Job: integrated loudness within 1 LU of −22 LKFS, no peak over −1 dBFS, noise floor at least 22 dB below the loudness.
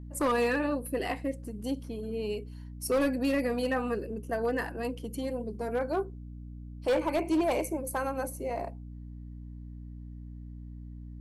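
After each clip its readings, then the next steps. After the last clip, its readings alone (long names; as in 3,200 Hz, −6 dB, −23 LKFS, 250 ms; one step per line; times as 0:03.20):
share of clipped samples 1.2%; peaks flattened at −22.0 dBFS; mains hum 60 Hz; hum harmonics up to 300 Hz; level of the hum −41 dBFS; integrated loudness −31.5 LKFS; sample peak −22.0 dBFS; target loudness −22.0 LKFS
→ clipped peaks rebuilt −22 dBFS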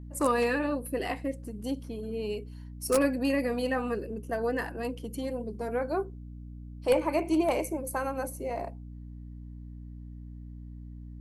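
share of clipped samples 0.0%; mains hum 60 Hz; hum harmonics up to 300 Hz; level of the hum −40 dBFS
→ mains-hum notches 60/120/180/240/300 Hz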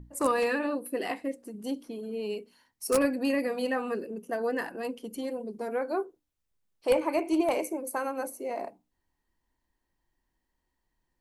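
mains hum none found; integrated loudness −31.0 LKFS; sample peak −12.5 dBFS; target loudness −22.0 LKFS
→ level +9 dB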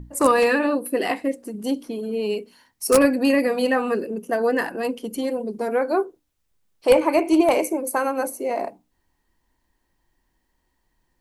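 integrated loudness −22.0 LKFS; sample peak −3.5 dBFS; background noise floor −72 dBFS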